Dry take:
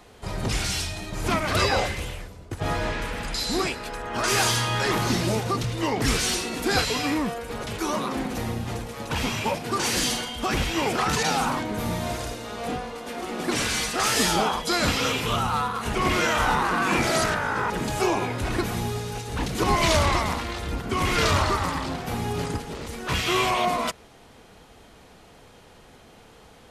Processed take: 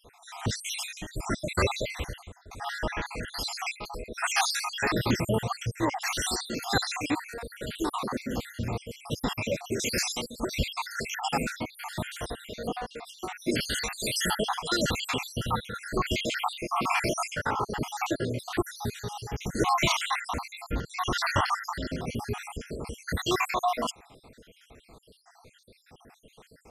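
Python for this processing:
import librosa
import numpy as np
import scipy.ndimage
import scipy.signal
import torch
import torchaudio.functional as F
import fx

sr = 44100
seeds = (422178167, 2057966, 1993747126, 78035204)

y = fx.spec_dropout(x, sr, seeds[0], share_pct=69)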